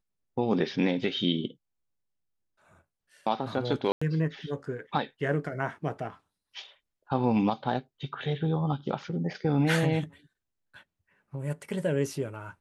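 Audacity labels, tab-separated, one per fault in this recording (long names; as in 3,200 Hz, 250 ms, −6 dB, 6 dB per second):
3.920000	4.010000	drop-out 95 ms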